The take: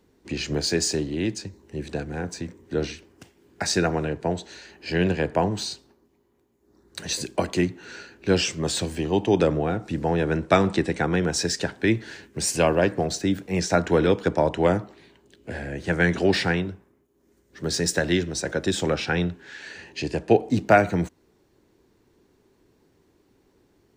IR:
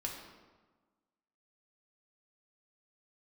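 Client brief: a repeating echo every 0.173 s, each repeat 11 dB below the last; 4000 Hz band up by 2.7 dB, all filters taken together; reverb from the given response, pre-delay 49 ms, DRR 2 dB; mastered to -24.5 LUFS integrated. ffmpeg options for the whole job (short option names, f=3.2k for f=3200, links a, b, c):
-filter_complex "[0:a]equalizer=f=4k:t=o:g=3.5,aecho=1:1:173|346|519:0.282|0.0789|0.0221,asplit=2[a][b];[1:a]atrim=start_sample=2205,adelay=49[c];[b][c]afir=irnorm=-1:irlink=0,volume=-2.5dB[d];[a][d]amix=inputs=2:normalize=0,volume=-3dB"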